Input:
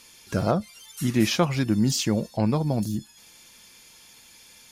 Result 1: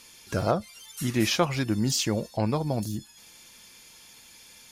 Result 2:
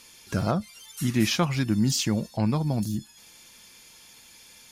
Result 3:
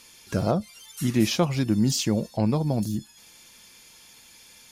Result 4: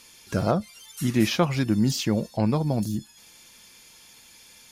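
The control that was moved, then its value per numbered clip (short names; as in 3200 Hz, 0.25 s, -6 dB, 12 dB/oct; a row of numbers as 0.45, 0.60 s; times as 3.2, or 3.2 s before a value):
dynamic EQ, frequency: 190, 490, 1600, 7700 Hz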